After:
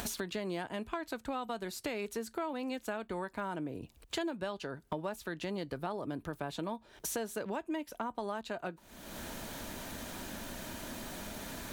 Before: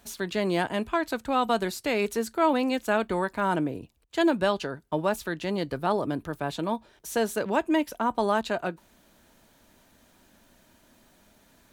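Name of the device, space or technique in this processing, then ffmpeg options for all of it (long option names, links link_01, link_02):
upward and downward compression: -af "acompressor=mode=upward:threshold=-31dB:ratio=2.5,acompressor=threshold=-37dB:ratio=6,volume=2dB"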